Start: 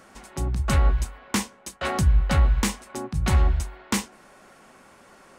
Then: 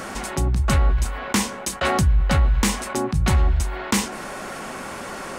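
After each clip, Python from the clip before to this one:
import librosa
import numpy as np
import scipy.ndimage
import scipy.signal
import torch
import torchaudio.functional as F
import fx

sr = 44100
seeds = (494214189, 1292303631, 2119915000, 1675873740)

y = fx.env_flatten(x, sr, amount_pct=50)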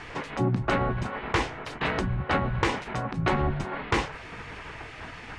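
y = fx.spec_gate(x, sr, threshold_db=-10, keep='weak')
y = scipy.signal.sosfilt(scipy.signal.butter(2, 2600.0, 'lowpass', fs=sr, output='sos'), y)
y = fx.low_shelf(y, sr, hz=450.0, db=6.0)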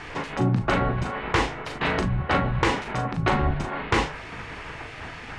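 y = fx.doubler(x, sr, ms=39.0, db=-6.5)
y = y * 10.0 ** (2.5 / 20.0)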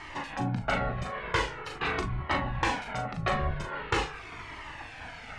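y = fx.low_shelf(x, sr, hz=370.0, db=-5.0)
y = fx.comb_cascade(y, sr, direction='falling', hz=0.44)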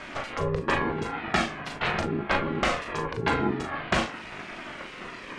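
y = x * np.sin(2.0 * np.pi * 280.0 * np.arange(len(x)) / sr)
y = y * 10.0 ** (6.0 / 20.0)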